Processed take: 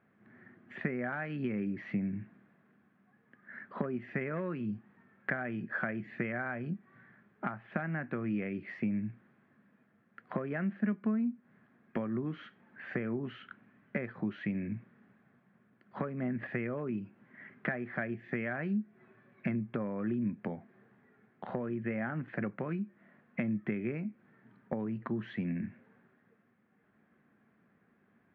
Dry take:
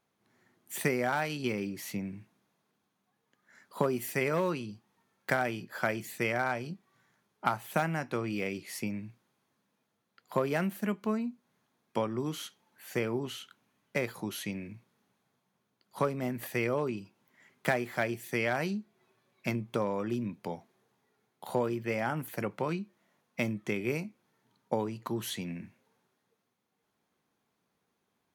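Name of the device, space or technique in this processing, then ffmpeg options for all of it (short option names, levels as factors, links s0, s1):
bass amplifier: -af "acompressor=threshold=0.00562:ratio=4,highpass=74,equalizer=f=220:t=q:w=4:g=6,equalizer=f=470:t=q:w=4:g=-3,equalizer=f=910:t=q:w=4:g=-8,equalizer=f=1700:t=q:w=4:g=7,lowpass=f=2200:w=0.5412,lowpass=f=2200:w=1.3066,lowshelf=f=320:g=4,volume=2.51"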